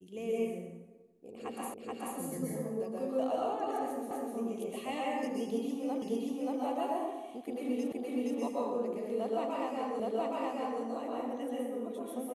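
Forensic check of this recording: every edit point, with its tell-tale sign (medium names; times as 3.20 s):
1.74 s: repeat of the last 0.43 s
4.11 s: repeat of the last 0.25 s
6.02 s: repeat of the last 0.58 s
7.92 s: repeat of the last 0.47 s
10.00 s: repeat of the last 0.82 s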